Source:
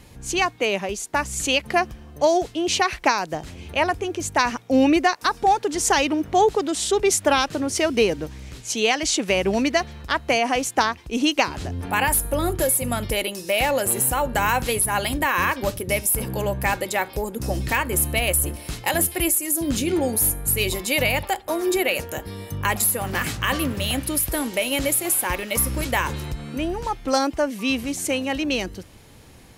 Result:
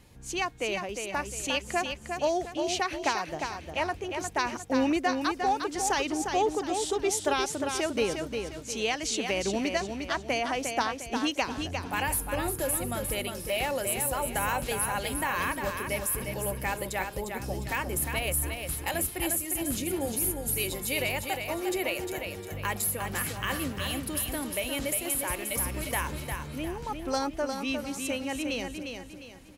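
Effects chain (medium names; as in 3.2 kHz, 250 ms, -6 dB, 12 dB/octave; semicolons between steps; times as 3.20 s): feedback delay 354 ms, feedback 38%, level -6 dB; trim -9 dB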